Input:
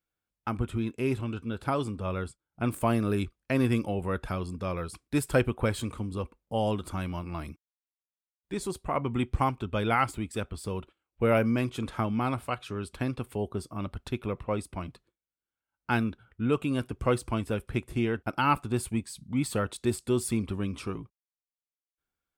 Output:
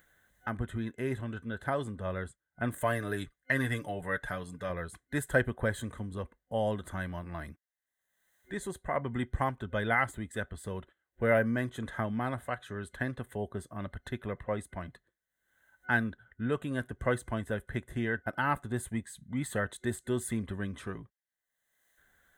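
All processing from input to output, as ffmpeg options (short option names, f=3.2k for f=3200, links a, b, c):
-filter_complex "[0:a]asettb=1/sr,asplit=3[a][b][c];[a]atrim=end=2.784[d];[b]atrim=start=2.78:end=4.7,asetpts=PTS-STARTPTS,afade=t=in:d=0.004:c=qsin,afade=t=out:st=1.916:d=0.004:c=qsin,tiltshelf=f=1.2k:g=-3.5,aecho=1:1:6.8:0.53,atrim=end_sample=84672[e];[c]atrim=start=4.696[f];[d][e]acrossfade=d=0.004:c1=hsin:c2=qsin[g];[g][f]acrossfade=d=0.004:c1=qsin:c2=hsin,superequalizer=6b=0.708:8b=1.58:11b=3.98:12b=0.501:14b=0.316,acompressor=mode=upward:threshold=-44dB:ratio=2.5,adynamicequalizer=threshold=0.00891:dfrequency=2100:dqfactor=0.9:tfrequency=2100:tqfactor=0.9:attack=5:release=100:ratio=0.375:range=2.5:mode=cutabove:tftype=bell,volume=-4.5dB"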